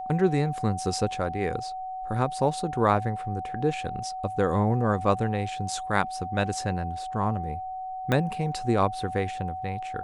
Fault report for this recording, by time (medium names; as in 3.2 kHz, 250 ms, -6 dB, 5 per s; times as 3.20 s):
whine 750 Hz -32 dBFS
8.12 s: pop -12 dBFS